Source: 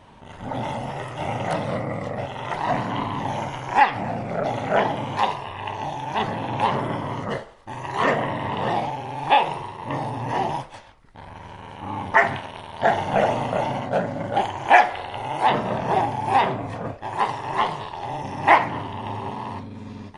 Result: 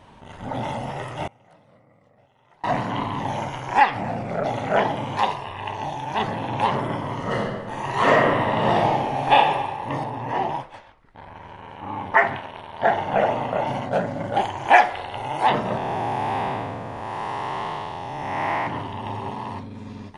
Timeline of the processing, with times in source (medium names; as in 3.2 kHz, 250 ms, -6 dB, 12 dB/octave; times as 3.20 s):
1.27–2.64 s: inverted gate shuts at -26 dBFS, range -29 dB
7.17–9.34 s: reverb throw, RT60 1.4 s, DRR -3 dB
10.04–13.67 s: tone controls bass -4 dB, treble -11 dB
15.77–18.67 s: spectral blur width 379 ms